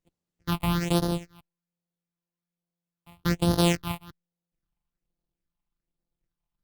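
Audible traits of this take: a buzz of ramps at a fixed pitch in blocks of 256 samples; phasing stages 6, 1.2 Hz, lowest notch 420–2300 Hz; Opus

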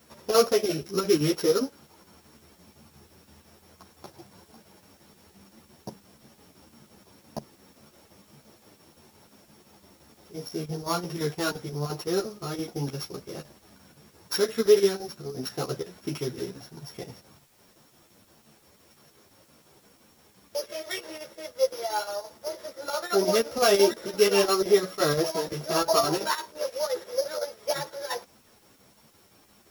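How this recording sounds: a buzz of ramps at a fixed pitch in blocks of 8 samples; chopped level 5.8 Hz, depth 60%, duty 75%; a quantiser's noise floor 10-bit, dither triangular; a shimmering, thickened sound

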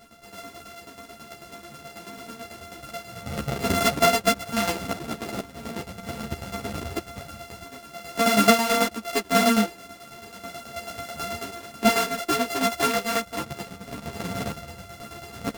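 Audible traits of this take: a buzz of ramps at a fixed pitch in blocks of 64 samples; tremolo saw down 9.2 Hz, depth 70%; a shimmering, thickened sound

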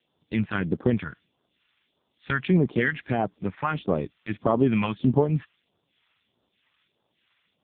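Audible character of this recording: a quantiser's noise floor 10-bit, dither triangular; phasing stages 2, 1.6 Hz, lowest notch 380–2200 Hz; AMR-NB

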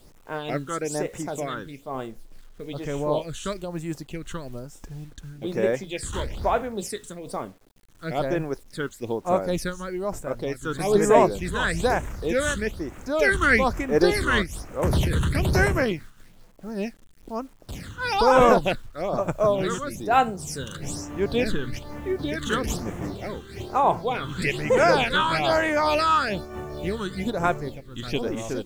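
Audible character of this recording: phasing stages 8, 1.1 Hz, lowest notch 660–4400 Hz; a quantiser's noise floor 10-bit, dither none; random flutter of the level

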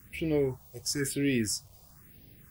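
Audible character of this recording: a quantiser's noise floor 10-bit, dither none; phasing stages 4, 1 Hz, lowest notch 270–1300 Hz

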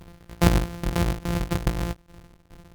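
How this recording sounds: a buzz of ramps at a fixed pitch in blocks of 256 samples; tremolo saw down 2.4 Hz, depth 90%; Opus

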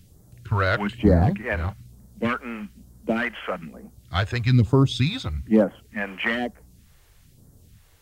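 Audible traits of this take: phasing stages 2, 1.1 Hz, lowest notch 180–2500 Hz

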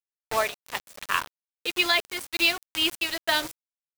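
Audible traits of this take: a quantiser's noise floor 6-bit, dither none; random flutter of the level

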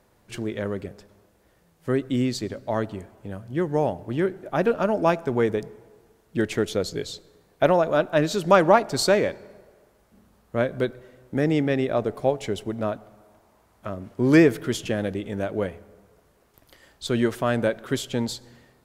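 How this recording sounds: noise floor -62 dBFS; spectral tilt -5.0 dB/octave

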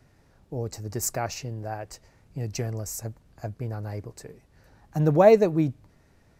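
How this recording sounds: noise floor -61 dBFS; spectral tilt -5.5 dB/octave

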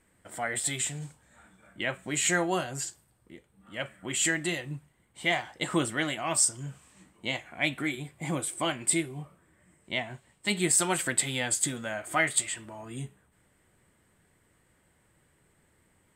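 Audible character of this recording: noise floor -68 dBFS; spectral tilt -2.5 dB/octave

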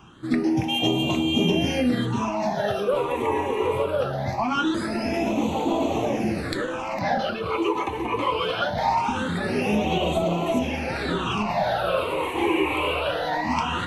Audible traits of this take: phasing stages 8, 0.22 Hz, lowest notch 190–1600 Hz

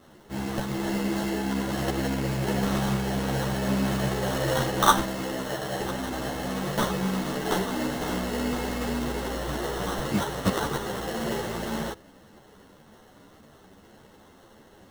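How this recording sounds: aliases and images of a low sample rate 2.4 kHz, jitter 0%; a shimmering, thickened sound

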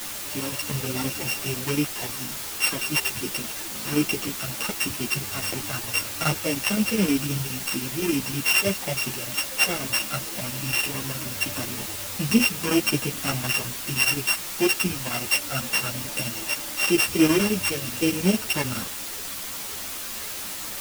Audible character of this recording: a buzz of ramps at a fixed pitch in blocks of 16 samples; chopped level 9.6 Hz, depth 65%, duty 75%; a quantiser's noise floor 6-bit, dither triangular; a shimmering, thickened sound

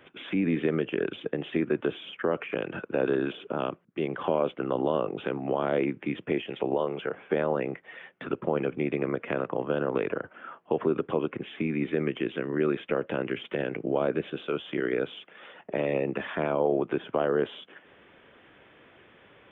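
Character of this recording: noise floor -58 dBFS; spectral tilt -5.0 dB/octave

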